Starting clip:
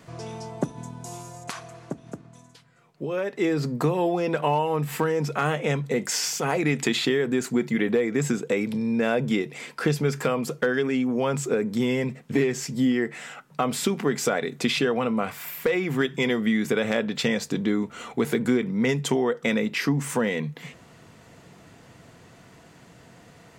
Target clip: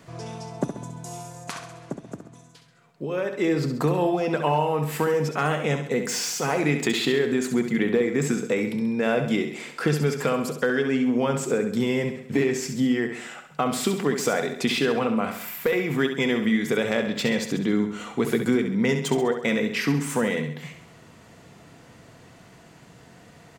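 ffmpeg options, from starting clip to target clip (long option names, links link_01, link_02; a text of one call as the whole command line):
ffmpeg -i in.wav -filter_complex "[0:a]acrossover=split=2700[link_01][link_02];[link_02]volume=26dB,asoftclip=hard,volume=-26dB[link_03];[link_01][link_03]amix=inputs=2:normalize=0,aecho=1:1:67|134|201|268|335|402:0.398|0.195|0.0956|0.0468|0.023|0.0112" out.wav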